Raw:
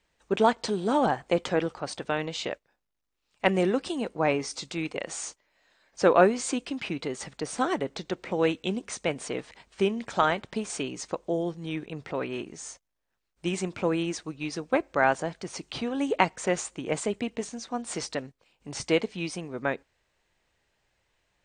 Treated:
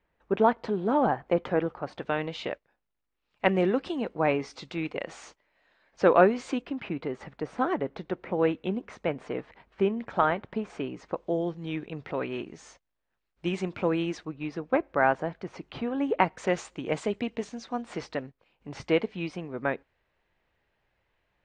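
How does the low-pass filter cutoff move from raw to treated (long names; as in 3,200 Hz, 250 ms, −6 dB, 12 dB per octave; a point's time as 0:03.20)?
1,800 Hz
from 0:01.98 3,000 Hz
from 0:06.62 1,900 Hz
from 0:11.17 3,500 Hz
from 0:14.25 2,100 Hz
from 0:16.37 4,100 Hz
from 0:17.82 2,700 Hz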